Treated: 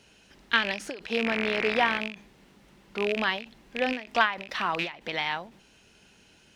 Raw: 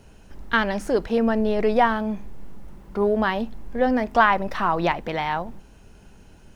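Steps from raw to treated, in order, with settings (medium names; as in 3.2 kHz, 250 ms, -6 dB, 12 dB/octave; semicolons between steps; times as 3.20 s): rattle on loud lows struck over -30 dBFS, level -19 dBFS; 1.24–1.99 s: mains buzz 60 Hz, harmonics 40, -31 dBFS -1 dB/octave; frequency weighting D; endings held to a fixed fall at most 140 dB/s; trim -7 dB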